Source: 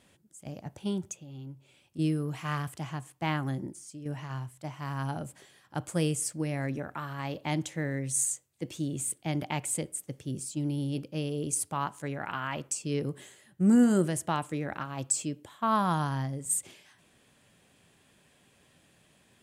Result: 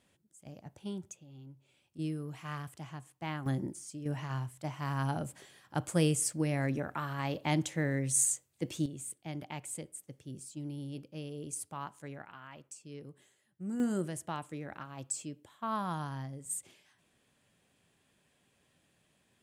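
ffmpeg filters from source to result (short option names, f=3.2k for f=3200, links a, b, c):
-af "asetnsamples=n=441:p=0,asendcmd='3.46 volume volume 0.5dB;8.86 volume volume -9.5dB;12.22 volume volume -16dB;13.8 volume volume -8.5dB',volume=-8dB"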